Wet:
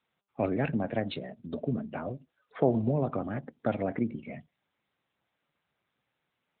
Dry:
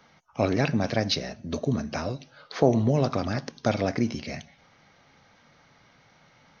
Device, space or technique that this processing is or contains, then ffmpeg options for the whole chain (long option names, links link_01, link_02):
mobile call with aggressive noise cancelling: -af "highpass=100,afftdn=noise_reduction=29:noise_floor=-36,volume=-4dB" -ar 8000 -c:a libopencore_amrnb -b:a 10200